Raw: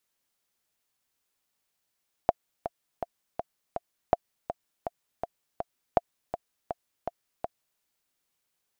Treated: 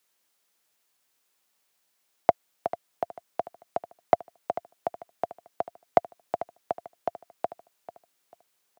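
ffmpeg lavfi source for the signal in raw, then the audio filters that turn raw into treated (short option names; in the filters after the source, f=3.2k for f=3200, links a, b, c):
-f lavfi -i "aevalsrc='pow(10,(-6.5-11*gte(mod(t,5*60/163),60/163))/20)*sin(2*PI*691*mod(t,60/163))*exp(-6.91*mod(t,60/163)/0.03)':d=5.52:s=44100"
-filter_complex "[0:a]highpass=f=92:w=0.5412,highpass=f=92:w=1.3066,acrossover=split=300[a][b];[b]acontrast=61[c];[a][c]amix=inputs=2:normalize=0,aecho=1:1:443|886|1329:0.188|0.0527|0.0148"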